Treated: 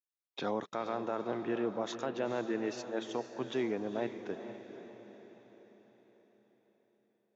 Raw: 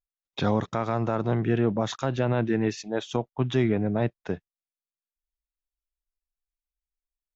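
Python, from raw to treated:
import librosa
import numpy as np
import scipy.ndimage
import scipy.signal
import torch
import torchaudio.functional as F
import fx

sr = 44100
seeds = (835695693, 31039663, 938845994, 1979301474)

p1 = scipy.signal.sosfilt(scipy.signal.cheby1(2, 1.0, 330.0, 'highpass', fs=sr, output='sos'), x)
p2 = p1 + fx.echo_diffused(p1, sr, ms=469, feedback_pct=51, wet_db=-10, dry=0)
y = F.gain(torch.from_numpy(p2), -7.5).numpy()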